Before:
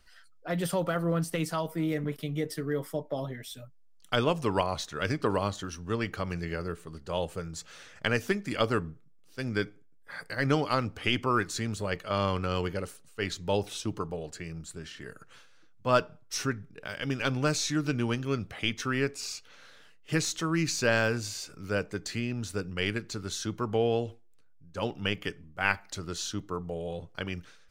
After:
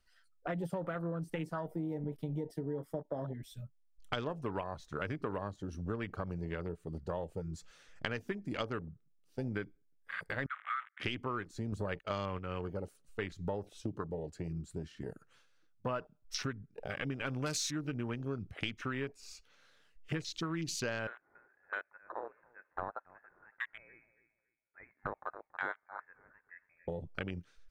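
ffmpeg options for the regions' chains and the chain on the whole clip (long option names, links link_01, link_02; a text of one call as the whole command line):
ffmpeg -i in.wav -filter_complex "[0:a]asettb=1/sr,asplit=3[link_01][link_02][link_03];[link_01]atrim=end=10.464[link_04];[link_02]atrim=start=10.46:end=11,asetpts=PTS-STARTPTS,afade=type=in:duration=0.004:curve=qsin,afade=type=out:start_time=0.536:duration=0.004:curve=qsin,acrusher=bits=7:dc=4:mix=0:aa=0.000001,asuperpass=centerf=1600:order=20:qfactor=1.5,adynamicequalizer=threshold=0.00562:dfrequency=1700:dqfactor=0.7:tfrequency=1700:tqfactor=0.7:attack=5:release=100:ratio=0.375:range=2.5:mode=boostabove:tftype=highshelf[link_05];[link_03]atrim=start=10.996[link_06];[link_04][link_05]acrossfade=duration=0.004:curve1=hsin:curve2=qsin[link_07];[link_07][link_06]acrossfade=duration=0.004:curve1=qsin:curve2=hsin,asettb=1/sr,asplit=3[link_08][link_09][link_10];[link_08]atrim=end=11.724[link_11];[link_09]atrim=start=11.72:end=12.39,asetpts=PTS-STARTPTS,afade=type=in:duration=0.004:curve=qsin,afade=type=out:start_time=0.666:duration=0.004:curve=qsin,agate=range=-17dB:threshold=-43dB:ratio=16:release=100:detection=peak,acontrast=53[link_12];[link_10]atrim=start=12.386[link_13];[link_11][link_12]acrossfade=duration=0.004:curve1=hsin:curve2=qsin[link_14];[link_14][link_13]acrossfade=duration=0.004:curve1=qsin:curve2=hsin,asettb=1/sr,asplit=3[link_15][link_16][link_17];[link_15]atrim=end=17.264[link_18];[link_16]atrim=start=17.26:end=17.71,asetpts=PTS-STARTPTS,afade=type=in:duration=0.004:curve=qsin,afade=type=out:start_time=0.446:duration=0.004:curve=qsin,highshelf=frequency=2500:gain=8.5,asoftclip=type=hard:threshold=-20dB[link_19];[link_17]atrim=start=17.706[link_20];[link_18][link_19]acrossfade=duration=0.004:curve1=hsin:curve2=qsin[link_21];[link_21][link_20]acrossfade=duration=0.004:curve1=qsin:curve2=hsin,asettb=1/sr,asplit=3[link_22][link_23][link_24];[link_22]atrim=end=21.074[link_25];[link_23]atrim=start=21.07:end=26.88,asetpts=PTS-STARTPTS,afade=type=in:duration=0.004:curve=qsin,afade=type=out:start_time=5.806:duration=0.004:curve=qsin,highpass=frequency=1100:width=0.5412,highpass=frequency=1100:width=1.3066,aecho=1:1:279|558|837:0.211|0.0507|0.0122,atrim=end_sample=256221,lowpass=frequency=2600:width_type=q:width=0.5098,lowpass=frequency=2600:width_type=q:width=0.6013,lowpass=frequency=2600:width_type=q:width=0.9,lowpass=frequency=2600:width_type=q:width=2.563,afreqshift=-3000[link_26];[link_24]atrim=start=26.876[link_27];[link_25][link_26]acrossfade=duration=0.004:curve1=hsin:curve2=qsin[link_28];[link_28][link_27]acrossfade=duration=0.004:curve1=qsin:curve2=hsin,afwtdn=0.0141,acompressor=threshold=-39dB:ratio=6,volume=4dB" out.wav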